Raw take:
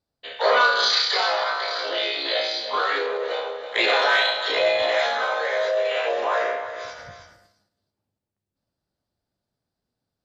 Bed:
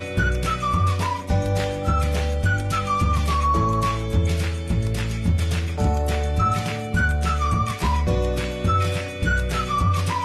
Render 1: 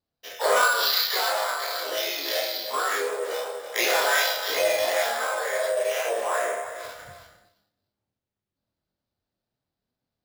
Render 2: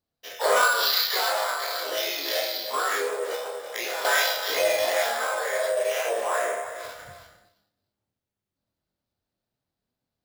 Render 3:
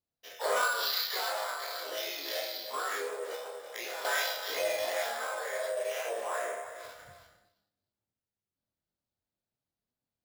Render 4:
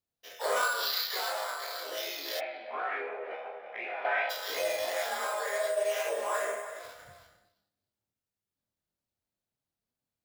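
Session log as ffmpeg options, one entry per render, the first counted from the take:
ffmpeg -i in.wav -af "flanger=delay=22.5:depth=4.5:speed=2.8,acrusher=samples=5:mix=1:aa=0.000001" out.wav
ffmpeg -i in.wav -filter_complex "[0:a]asettb=1/sr,asplit=3[link_01][link_02][link_03];[link_01]atrim=end=3.354[link_04];[link_02]atrim=start=3.35:end=4.05,asetpts=PTS-STARTPTS,afade=type=in:duration=0.004:curve=qsin,afade=type=out:start_time=0.696:duration=0.004:curve=qsin,acompressor=threshold=-28dB:ratio=4:attack=3.2:release=140:knee=1:detection=peak[link_05];[link_03]atrim=start=4.046[link_06];[link_04][link_05]acrossfade=duration=0.004:curve1=hsin:curve2=qsin[link_07];[link_07][link_06]acrossfade=duration=0.004:curve1=qsin:curve2=hsin" out.wav
ffmpeg -i in.wav -af "volume=-8.5dB" out.wav
ffmpeg -i in.wav -filter_complex "[0:a]asplit=3[link_01][link_02][link_03];[link_01]afade=type=out:start_time=2.39:duration=0.02[link_04];[link_02]highpass=160,equalizer=frequency=200:width_type=q:width=4:gain=8,equalizer=frequency=480:width_type=q:width=4:gain=-5,equalizer=frequency=730:width_type=q:width=4:gain=9,equalizer=frequency=1100:width_type=q:width=4:gain=-4,equalizer=frequency=2400:width_type=q:width=4:gain=10,lowpass=frequency=2400:width=0.5412,lowpass=frequency=2400:width=1.3066,afade=type=in:start_time=2.39:duration=0.02,afade=type=out:start_time=4.29:duration=0.02[link_05];[link_03]afade=type=in:start_time=4.29:duration=0.02[link_06];[link_04][link_05][link_06]amix=inputs=3:normalize=0,asettb=1/sr,asplit=3[link_07][link_08][link_09];[link_07]atrim=end=5.114[link_10];[link_08]atrim=start=5.11:end=6.79,asetpts=PTS-STARTPTS,afade=type=in:duration=0.004:curve=qsin,afade=type=out:start_time=1.676:duration=0.004:curve=qsin,aecho=1:1:4.9:0.97,atrim=end_sample=74088[link_11];[link_09]atrim=start=6.786[link_12];[link_10][link_11]acrossfade=duration=0.004:curve1=hsin:curve2=qsin[link_13];[link_13][link_12]acrossfade=duration=0.004:curve1=qsin:curve2=hsin" out.wav

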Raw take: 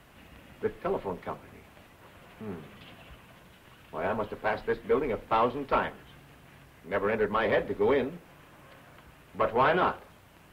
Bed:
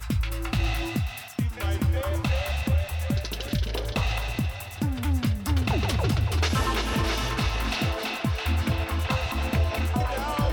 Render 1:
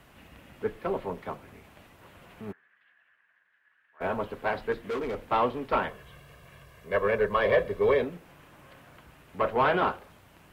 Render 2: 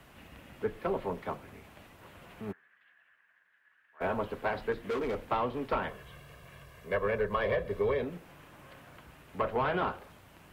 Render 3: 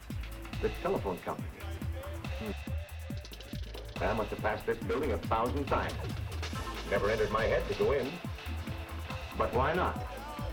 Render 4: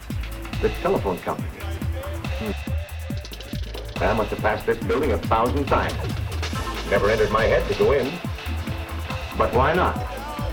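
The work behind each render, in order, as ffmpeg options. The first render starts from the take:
ffmpeg -i in.wav -filter_complex "[0:a]asplit=3[link_01][link_02][link_03];[link_01]afade=type=out:start_time=2.51:duration=0.02[link_04];[link_02]bandpass=frequency=1700:width_type=q:width=10,afade=type=in:start_time=2.51:duration=0.02,afade=type=out:start_time=4:duration=0.02[link_05];[link_03]afade=type=in:start_time=4:duration=0.02[link_06];[link_04][link_05][link_06]amix=inputs=3:normalize=0,asettb=1/sr,asplit=3[link_07][link_08][link_09];[link_07]atrim=end=4.724[link_10];[link_08]atrim=start=4.72:end=5.17,asetpts=PTS-STARTPTS,afade=type=in:duration=0.004:curve=qsin,afade=type=out:start_time=0.446:duration=0.004:curve=qsin,volume=28.5dB,asoftclip=hard,volume=-28.5dB[link_11];[link_09]atrim=start=5.166[link_12];[link_10][link_11]acrossfade=duration=0.004:curve1=hsin:curve2=qsin[link_13];[link_13][link_12]acrossfade=duration=0.004:curve1=qsin:curve2=hsin,asettb=1/sr,asplit=3[link_14][link_15][link_16];[link_14]atrim=end=5.894[link_17];[link_15]atrim=start=5.89:end=8.02,asetpts=PTS-STARTPTS,afade=type=in:duration=0.004:curve=qsin,afade=type=out:start_time=2.126:duration=0.004:curve=qsin,aecho=1:1:1.8:0.65,atrim=end_sample=93933[link_18];[link_16]atrim=start=8.016[link_19];[link_17][link_18]acrossfade=duration=0.004:curve1=hsin:curve2=qsin[link_20];[link_20][link_19]acrossfade=duration=0.004:curve1=qsin:curve2=hsin" out.wav
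ffmpeg -i in.wav -filter_complex "[0:a]acrossover=split=170[link_01][link_02];[link_02]acompressor=threshold=-27dB:ratio=6[link_03];[link_01][link_03]amix=inputs=2:normalize=0" out.wav
ffmpeg -i in.wav -i bed.wav -filter_complex "[1:a]volume=-13.5dB[link_01];[0:a][link_01]amix=inputs=2:normalize=0" out.wav
ffmpeg -i in.wav -af "volume=10.5dB" out.wav

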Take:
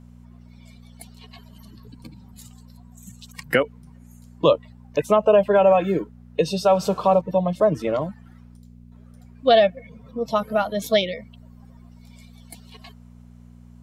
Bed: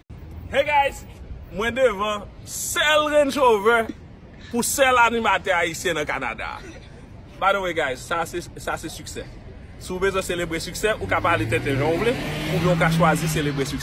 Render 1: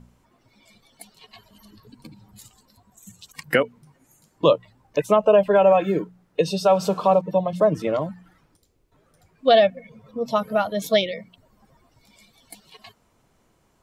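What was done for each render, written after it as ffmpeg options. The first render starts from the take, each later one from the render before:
ffmpeg -i in.wav -af "bandreject=frequency=60:width_type=h:width=4,bandreject=frequency=120:width_type=h:width=4,bandreject=frequency=180:width_type=h:width=4,bandreject=frequency=240:width_type=h:width=4" out.wav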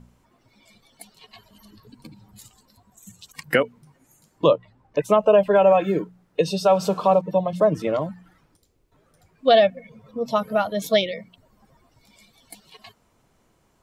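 ffmpeg -i in.wav -filter_complex "[0:a]asplit=3[link_01][link_02][link_03];[link_01]afade=type=out:start_time=4.46:duration=0.02[link_04];[link_02]lowpass=frequency=2300:poles=1,afade=type=in:start_time=4.46:duration=0.02,afade=type=out:start_time=5.04:duration=0.02[link_05];[link_03]afade=type=in:start_time=5.04:duration=0.02[link_06];[link_04][link_05][link_06]amix=inputs=3:normalize=0" out.wav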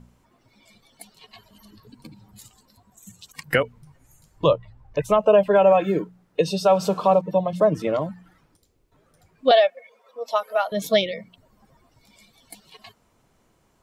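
ffmpeg -i in.wav -filter_complex "[0:a]asplit=3[link_01][link_02][link_03];[link_01]afade=type=out:start_time=3.5:duration=0.02[link_04];[link_02]asubboost=boost=10.5:cutoff=79,afade=type=in:start_time=3.5:duration=0.02,afade=type=out:start_time=5.18:duration=0.02[link_05];[link_03]afade=type=in:start_time=5.18:duration=0.02[link_06];[link_04][link_05][link_06]amix=inputs=3:normalize=0,asettb=1/sr,asplit=3[link_07][link_08][link_09];[link_07]atrim=end=9.514[link_10];[link_08]atrim=start=9.51:end=10.72,asetpts=PTS-STARTPTS,afade=type=in:duration=0.004:curve=qsin,afade=type=out:start_time=1.206:duration=0.004:curve=qsin,highpass=frequency=520:width=0.5412,highpass=frequency=520:width=1.3066[link_11];[link_09]atrim=start=10.716[link_12];[link_10][link_11]acrossfade=duration=0.004:curve1=hsin:curve2=qsin[link_13];[link_13][link_12]acrossfade=duration=0.004:curve1=qsin:curve2=hsin" out.wav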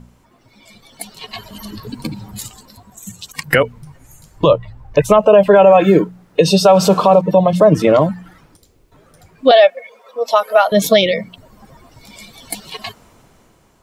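ffmpeg -i in.wav -af "dynaudnorm=framelen=260:gausssize=9:maxgain=11.5dB,alimiter=level_in=8dB:limit=-1dB:release=50:level=0:latency=1" out.wav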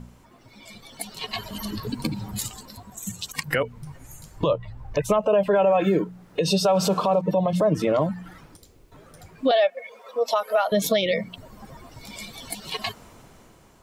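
ffmpeg -i in.wav -af "acompressor=threshold=-26dB:ratio=1.5,alimiter=limit=-12dB:level=0:latency=1:release=133" out.wav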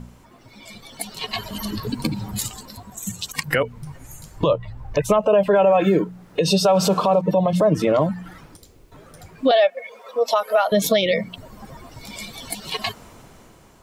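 ffmpeg -i in.wav -af "volume=3.5dB" out.wav

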